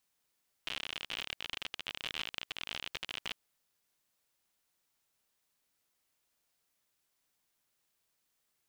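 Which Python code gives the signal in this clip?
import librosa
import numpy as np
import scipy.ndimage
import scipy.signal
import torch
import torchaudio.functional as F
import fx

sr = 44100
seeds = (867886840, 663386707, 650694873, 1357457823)

y = fx.geiger_clicks(sr, seeds[0], length_s=2.69, per_s=59.0, level_db=-22.0)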